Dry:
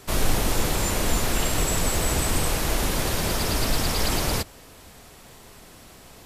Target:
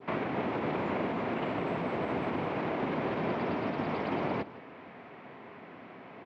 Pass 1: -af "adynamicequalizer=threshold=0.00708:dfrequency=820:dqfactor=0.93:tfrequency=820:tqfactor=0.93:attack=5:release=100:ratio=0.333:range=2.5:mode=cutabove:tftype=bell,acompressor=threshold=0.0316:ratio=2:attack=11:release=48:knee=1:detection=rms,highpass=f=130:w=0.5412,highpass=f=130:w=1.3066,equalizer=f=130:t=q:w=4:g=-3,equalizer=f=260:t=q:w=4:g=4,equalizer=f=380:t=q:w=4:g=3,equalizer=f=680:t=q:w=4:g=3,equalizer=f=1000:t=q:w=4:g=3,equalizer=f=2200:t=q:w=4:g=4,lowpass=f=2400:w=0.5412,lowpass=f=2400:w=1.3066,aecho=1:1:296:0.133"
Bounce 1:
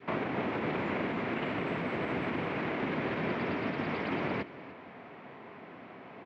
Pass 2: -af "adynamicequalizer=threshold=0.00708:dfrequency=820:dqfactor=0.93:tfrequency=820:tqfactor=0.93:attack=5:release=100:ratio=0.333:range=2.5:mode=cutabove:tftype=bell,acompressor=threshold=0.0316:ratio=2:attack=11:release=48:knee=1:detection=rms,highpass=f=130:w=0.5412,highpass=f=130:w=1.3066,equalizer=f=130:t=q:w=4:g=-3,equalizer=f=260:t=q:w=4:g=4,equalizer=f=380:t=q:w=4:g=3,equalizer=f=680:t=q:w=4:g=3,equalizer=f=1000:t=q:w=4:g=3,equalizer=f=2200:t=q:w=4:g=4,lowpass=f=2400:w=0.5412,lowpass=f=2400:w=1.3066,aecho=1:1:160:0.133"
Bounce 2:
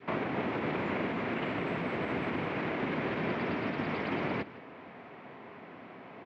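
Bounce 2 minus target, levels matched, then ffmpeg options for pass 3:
2 kHz band +3.5 dB
-af "adynamicequalizer=threshold=0.00708:dfrequency=1900:dqfactor=0.93:tfrequency=1900:tqfactor=0.93:attack=5:release=100:ratio=0.333:range=2.5:mode=cutabove:tftype=bell,acompressor=threshold=0.0316:ratio=2:attack=11:release=48:knee=1:detection=rms,highpass=f=130:w=0.5412,highpass=f=130:w=1.3066,equalizer=f=130:t=q:w=4:g=-3,equalizer=f=260:t=q:w=4:g=4,equalizer=f=380:t=q:w=4:g=3,equalizer=f=680:t=q:w=4:g=3,equalizer=f=1000:t=q:w=4:g=3,equalizer=f=2200:t=q:w=4:g=4,lowpass=f=2400:w=0.5412,lowpass=f=2400:w=1.3066,aecho=1:1:160:0.133"

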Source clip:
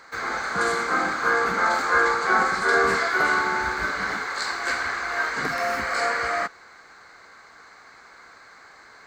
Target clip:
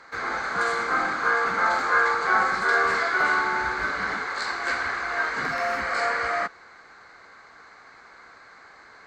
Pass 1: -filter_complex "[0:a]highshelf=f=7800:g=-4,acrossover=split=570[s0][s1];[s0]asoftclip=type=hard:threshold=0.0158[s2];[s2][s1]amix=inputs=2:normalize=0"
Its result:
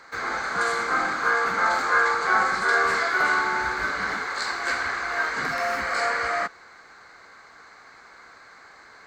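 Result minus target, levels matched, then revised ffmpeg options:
8 kHz band +4.0 dB
-filter_complex "[0:a]highshelf=f=7800:g=-14,acrossover=split=570[s0][s1];[s0]asoftclip=type=hard:threshold=0.0158[s2];[s2][s1]amix=inputs=2:normalize=0"

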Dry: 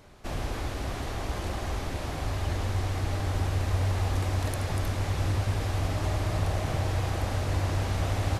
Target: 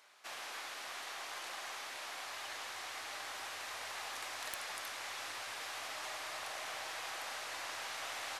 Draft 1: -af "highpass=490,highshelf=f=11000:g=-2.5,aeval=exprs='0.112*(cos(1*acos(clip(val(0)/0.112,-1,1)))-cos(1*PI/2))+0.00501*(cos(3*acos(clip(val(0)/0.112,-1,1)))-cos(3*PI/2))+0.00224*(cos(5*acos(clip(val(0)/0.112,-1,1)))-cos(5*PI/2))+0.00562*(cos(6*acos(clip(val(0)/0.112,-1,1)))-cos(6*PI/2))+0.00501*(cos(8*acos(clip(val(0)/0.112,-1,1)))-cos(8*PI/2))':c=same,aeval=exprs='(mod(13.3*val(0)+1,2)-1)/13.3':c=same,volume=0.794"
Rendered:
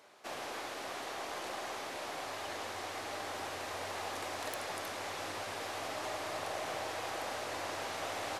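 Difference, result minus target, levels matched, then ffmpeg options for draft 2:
500 Hz band +8.5 dB
-af "highpass=1200,highshelf=f=11000:g=-2.5,aeval=exprs='0.112*(cos(1*acos(clip(val(0)/0.112,-1,1)))-cos(1*PI/2))+0.00501*(cos(3*acos(clip(val(0)/0.112,-1,1)))-cos(3*PI/2))+0.00224*(cos(5*acos(clip(val(0)/0.112,-1,1)))-cos(5*PI/2))+0.00562*(cos(6*acos(clip(val(0)/0.112,-1,1)))-cos(6*PI/2))+0.00501*(cos(8*acos(clip(val(0)/0.112,-1,1)))-cos(8*PI/2))':c=same,aeval=exprs='(mod(13.3*val(0)+1,2)-1)/13.3':c=same,volume=0.794"

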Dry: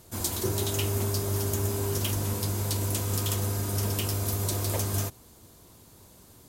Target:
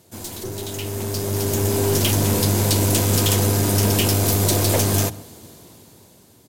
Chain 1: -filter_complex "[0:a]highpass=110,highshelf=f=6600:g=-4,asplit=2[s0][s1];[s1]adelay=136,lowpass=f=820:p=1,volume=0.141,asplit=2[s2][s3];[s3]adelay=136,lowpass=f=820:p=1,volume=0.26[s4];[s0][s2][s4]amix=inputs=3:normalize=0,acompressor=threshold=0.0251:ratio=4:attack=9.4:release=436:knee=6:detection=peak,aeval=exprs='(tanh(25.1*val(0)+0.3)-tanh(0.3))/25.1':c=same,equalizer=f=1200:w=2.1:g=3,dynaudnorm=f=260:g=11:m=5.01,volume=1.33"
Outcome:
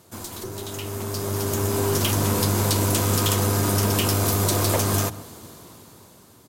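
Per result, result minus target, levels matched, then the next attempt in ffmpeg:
compression: peak gain reduction +7.5 dB; 1 kHz band +4.0 dB
-filter_complex "[0:a]highpass=110,highshelf=f=6600:g=-4,asplit=2[s0][s1];[s1]adelay=136,lowpass=f=820:p=1,volume=0.141,asplit=2[s2][s3];[s3]adelay=136,lowpass=f=820:p=1,volume=0.26[s4];[s0][s2][s4]amix=inputs=3:normalize=0,aeval=exprs='(tanh(25.1*val(0)+0.3)-tanh(0.3))/25.1':c=same,equalizer=f=1200:w=2.1:g=3,dynaudnorm=f=260:g=11:m=5.01,volume=1.33"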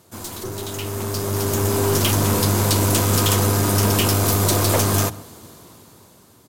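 1 kHz band +4.0 dB
-filter_complex "[0:a]highpass=110,highshelf=f=6600:g=-4,asplit=2[s0][s1];[s1]adelay=136,lowpass=f=820:p=1,volume=0.141,asplit=2[s2][s3];[s3]adelay=136,lowpass=f=820:p=1,volume=0.26[s4];[s0][s2][s4]amix=inputs=3:normalize=0,aeval=exprs='(tanh(25.1*val(0)+0.3)-tanh(0.3))/25.1':c=same,equalizer=f=1200:w=2.1:g=-5.5,dynaudnorm=f=260:g=11:m=5.01,volume=1.33"

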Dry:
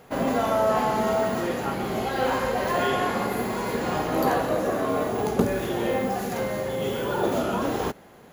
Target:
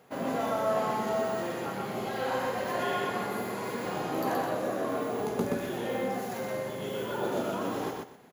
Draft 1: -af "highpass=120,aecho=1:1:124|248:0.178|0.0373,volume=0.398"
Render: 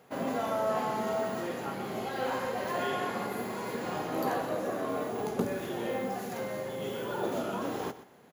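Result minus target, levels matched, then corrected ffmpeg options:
echo-to-direct -12 dB
-af "highpass=120,aecho=1:1:124|248|372:0.708|0.149|0.0312,volume=0.398"

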